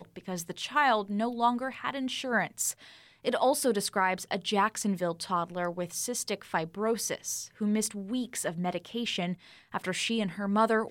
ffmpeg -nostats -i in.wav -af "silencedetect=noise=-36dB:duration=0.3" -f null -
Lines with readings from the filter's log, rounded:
silence_start: 2.71
silence_end: 3.25 | silence_duration: 0.53
silence_start: 9.34
silence_end: 9.74 | silence_duration: 0.40